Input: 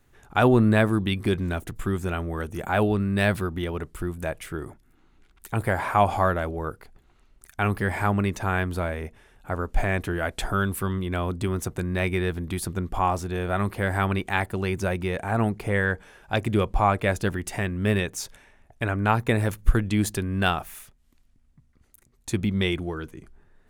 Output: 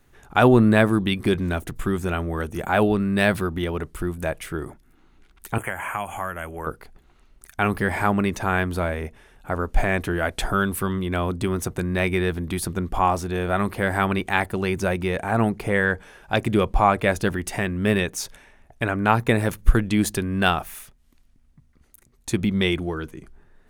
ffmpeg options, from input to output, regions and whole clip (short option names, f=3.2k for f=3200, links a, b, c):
-filter_complex "[0:a]asettb=1/sr,asplit=3[a][b][c];[a]atrim=end=5.584[d];[b]atrim=start=5.58:end=6.67,asetpts=PTS-STARTPTS,afade=t=in:d=0.004:c=qsin,afade=t=out:st=1.086:d=0.004:c=qsin,tiltshelf=f=940:g=-8,acrossover=split=240|6900[e][f][g];[e]acompressor=threshold=-38dB:ratio=4[h];[f]acompressor=threshold=-31dB:ratio=4[i];[g]acompressor=threshold=-50dB:ratio=4[j];[h][i][j]amix=inputs=3:normalize=0,asuperstop=centerf=4500:order=20:qfactor=1.6[k];[c]atrim=start=6.666[l];[d][k]acrossfade=d=0.004:c1=hsin:c2=qsin[m];[m][l]acrossfade=d=0.004:c1=qsin:c2=hsin,equalizer=f=100:w=7.5:g=-8.5,bandreject=f=7.4k:w=23,volume=3.5dB"